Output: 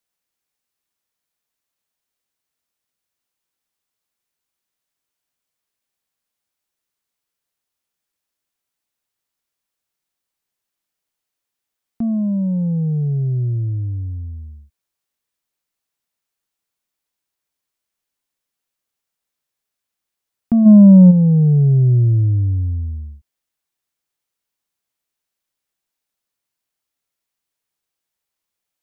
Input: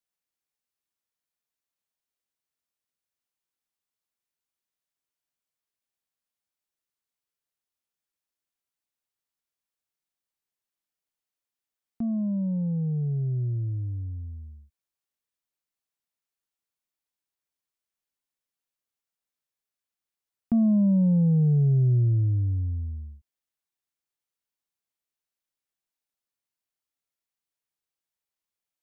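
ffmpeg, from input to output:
-filter_complex "[0:a]asplit=3[a][b][c];[a]afade=t=out:st=20.65:d=0.02[d];[b]acontrast=76,afade=t=in:st=20.65:d=0.02,afade=t=out:st=21.1:d=0.02[e];[c]afade=t=in:st=21.1:d=0.02[f];[d][e][f]amix=inputs=3:normalize=0,volume=8dB"

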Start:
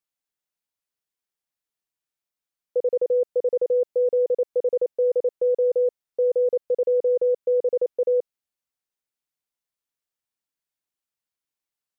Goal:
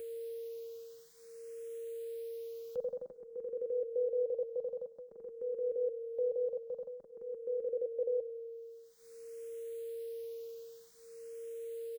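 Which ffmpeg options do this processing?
-filter_complex "[0:a]equalizer=f=610:w=0.45:g=-8,acompressor=mode=upward:threshold=-42dB:ratio=2.5,alimiter=level_in=7.5dB:limit=-24dB:level=0:latency=1:release=389,volume=-7.5dB,asplit=3[a][b][c];[a]afade=t=out:st=2.77:d=0.02[d];[b]acontrast=21,afade=t=in:st=2.77:d=0.02,afade=t=out:st=3.21:d=0.02[e];[c]afade=t=in:st=3.21:d=0.02[f];[d][e][f]amix=inputs=3:normalize=0,aeval=exprs='val(0)+0.00708*sin(2*PI*460*n/s)':c=same,aecho=1:1:102|204|306|408|510:0.126|0.0705|0.0395|0.0221|0.0124,asplit=2[g][h];[h]afreqshift=0.51[i];[g][i]amix=inputs=2:normalize=1,volume=3dB"

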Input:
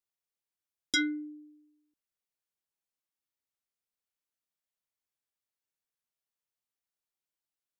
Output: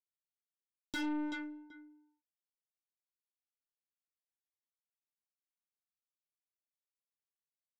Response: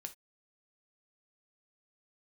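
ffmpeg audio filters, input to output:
-filter_complex "[0:a]aeval=exprs='sgn(val(0))*max(abs(val(0))-0.00266,0)':c=same,asplit=2[a][b];[b]adelay=382,lowpass=f=1.2k:p=1,volume=-20.5dB,asplit=2[c][d];[d]adelay=382,lowpass=f=1.2k:p=1,volume=0.22[e];[c][e]amix=inputs=2:normalize=0[f];[a][f]amix=inputs=2:normalize=0,asplit=2[g][h];[h]highpass=f=720:p=1,volume=22dB,asoftclip=type=tanh:threshold=-21dB[i];[g][i]amix=inputs=2:normalize=0,lowpass=f=2.1k:p=1,volume=-6dB,lowshelf=f=320:g=4.5,acrossover=split=600|1600[j][k][l];[l]alimiter=level_in=8.5dB:limit=-24dB:level=0:latency=1,volume=-8.5dB[m];[j][k][m]amix=inputs=3:normalize=0,aeval=exprs='(tanh(56.2*val(0)+0.3)-tanh(0.3))/56.2':c=same,volume=1dB"

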